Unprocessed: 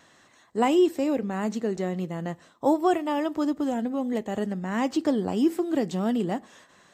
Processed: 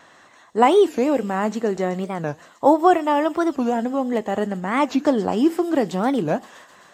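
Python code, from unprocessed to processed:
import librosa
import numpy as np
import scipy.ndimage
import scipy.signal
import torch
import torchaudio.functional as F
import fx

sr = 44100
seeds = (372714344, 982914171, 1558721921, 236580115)

y = fx.peak_eq(x, sr, hz=1000.0, db=8.5, octaves=2.7)
y = fx.echo_wet_highpass(y, sr, ms=130, feedback_pct=77, hz=5000.0, wet_db=-8.0)
y = fx.record_warp(y, sr, rpm=45.0, depth_cents=250.0)
y = y * 10.0 ** (1.5 / 20.0)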